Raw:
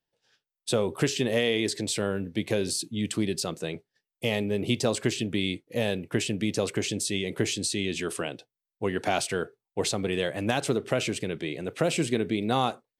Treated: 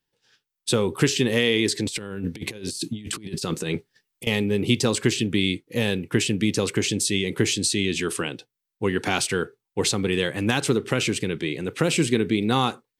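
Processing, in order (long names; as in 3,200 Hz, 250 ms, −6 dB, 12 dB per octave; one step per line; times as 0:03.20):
parametric band 640 Hz −14 dB 0.41 octaves
0:01.86–0:04.27: compressor whose output falls as the input rises −35 dBFS, ratio −0.5
level +6 dB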